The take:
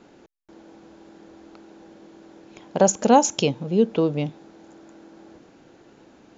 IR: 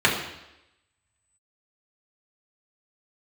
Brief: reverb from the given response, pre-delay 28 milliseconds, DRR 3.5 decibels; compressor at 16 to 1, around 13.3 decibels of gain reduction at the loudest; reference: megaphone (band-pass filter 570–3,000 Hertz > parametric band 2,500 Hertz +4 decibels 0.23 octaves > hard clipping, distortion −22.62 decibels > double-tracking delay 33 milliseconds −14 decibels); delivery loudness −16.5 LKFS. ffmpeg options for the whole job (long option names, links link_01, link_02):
-filter_complex "[0:a]acompressor=threshold=-23dB:ratio=16,asplit=2[link_01][link_02];[1:a]atrim=start_sample=2205,adelay=28[link_03];[link_02][link_03]afir=irnorm=-1:irlink=0,volume=-23dB[link_04];[link_01][link_04]amix=inputs=2:normalize=0,highpass=570,lowpass=3000,equalizer=frequency=2500:width_type=o:width=0.23:gain=4,asoftclip=type=hard:threshold=-21.5dB,asplit=2[link_05][link_06];[link_06]adelay=33,volume=-14dB[link_07];[link_05][link_07]amix=inputs=2:normalize=0,volume=19dB"